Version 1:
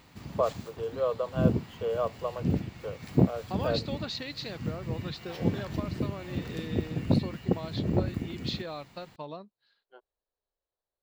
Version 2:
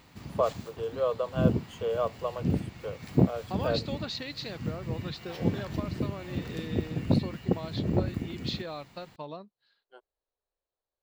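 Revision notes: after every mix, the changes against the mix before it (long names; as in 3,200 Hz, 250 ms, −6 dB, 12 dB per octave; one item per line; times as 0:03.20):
first voice: remove high-frequency loss of the air 170 metres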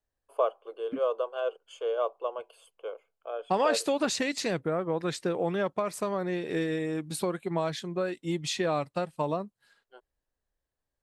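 second voice: remove transistor ladder low-pass 4,600 Hz, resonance 65%
background: muted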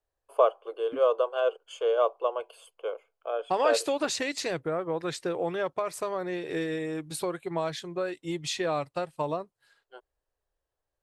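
first voice +5.0 dB
master: add parametric band 210 Hz −14.5 dB 0.4 octaves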